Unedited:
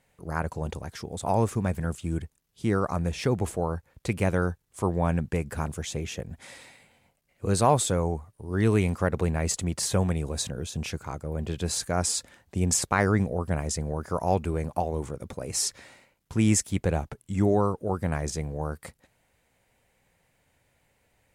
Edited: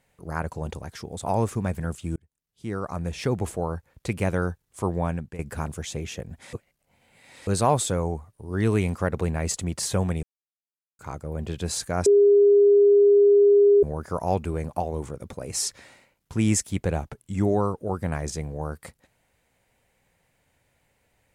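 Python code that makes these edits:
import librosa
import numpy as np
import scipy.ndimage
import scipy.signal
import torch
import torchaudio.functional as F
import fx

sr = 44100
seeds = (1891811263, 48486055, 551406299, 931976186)

y = fx.edit(x, sr, fx.fade_in_span(start_s=2.16, length_s=1.12),
    fx.fade_out_to(start_s=4.98, length_s=0.41, floor_db=-14.0),
    fx.reverse_span(start_s=6.53, length_s=0.94),
    fx.silence(start_s=10.23, length_s=0.76),
    fx.bleep(start_s=12.06, length_s=1.77, hz=406.0, db=-12.5), tone=tone)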